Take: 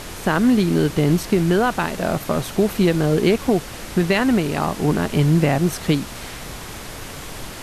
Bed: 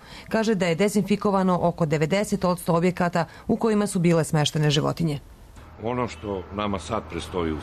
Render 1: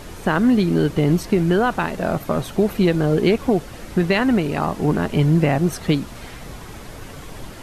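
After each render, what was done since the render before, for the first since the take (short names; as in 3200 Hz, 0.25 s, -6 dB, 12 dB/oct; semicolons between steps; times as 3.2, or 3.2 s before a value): denoiser 8 dB, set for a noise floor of -34 dBFS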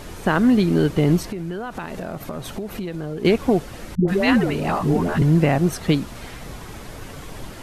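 1.25–3.25 compressor, threshold -26 dBFS; 3.95–5.22 dispersion highs, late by 0.131 s, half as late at 470 Hz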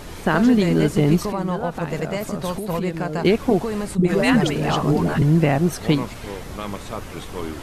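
add bed -4.5 dB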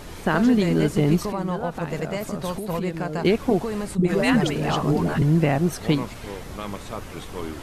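gain -2.5 dB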